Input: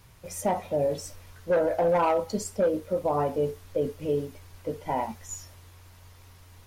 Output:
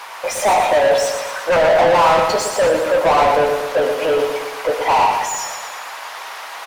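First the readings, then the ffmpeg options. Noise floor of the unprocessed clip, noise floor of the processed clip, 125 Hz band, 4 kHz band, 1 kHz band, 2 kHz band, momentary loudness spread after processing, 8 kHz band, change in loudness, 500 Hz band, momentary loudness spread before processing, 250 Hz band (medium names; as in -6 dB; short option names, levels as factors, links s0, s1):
-52 dBFS, -32 dBFS, +2.0 dB, +21.5 dB, +15.5 dB, +20.5 dB, 16 LU, +14.0 dB, +12.0 dB, +11.0 dB, 15 LU, +3.5 dB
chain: -filter_complex "[0:a]highpass=f=790:t=q:w=1.6,asplit=2[s0][s1];[s1]highpass=f=720:p=1,volume=39.8,asoftclip=type=tanh:threshold=0.282[s2];[s0][s2]amix=inputs=2:normalize=0,lowpass=f=2000:p=1,volume=0.501,aecho=1:1:117|234|351|468|585|702|819:0.501|0.271|0.146|0.0789|0.0426|0.023|0.0124,volume=1.58"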